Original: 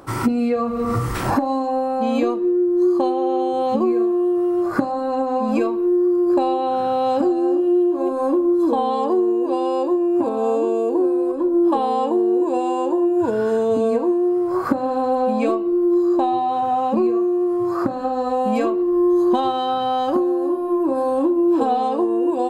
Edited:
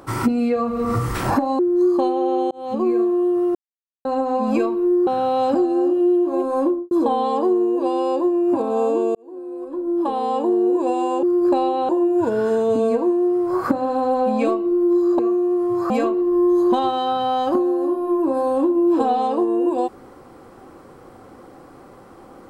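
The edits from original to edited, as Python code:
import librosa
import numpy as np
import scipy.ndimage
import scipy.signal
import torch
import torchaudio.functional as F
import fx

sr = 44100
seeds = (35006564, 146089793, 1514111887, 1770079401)

y = fx.studio_fade_out(x, sr, start_s=8.31, length_s=0.27)
y = fx.edit(y, sr, fx.cut(start_s=1.59, length_s=1.01),
    fx.fade_in_span(start_s=3.52, length_s=0.39),
    fx.silence(start_s=4.56, length_s=0.5),
    fx.move(start_s=6.08, length_s=0.66, to_s=12.9),
    fx.fade_in_span(start_s=10.82, length_s=1.41),
    fx.cut(start_s=16.2, length_s=0.89),
    fx.cut(start_s=17.8, length_s=0.71), tone=tone)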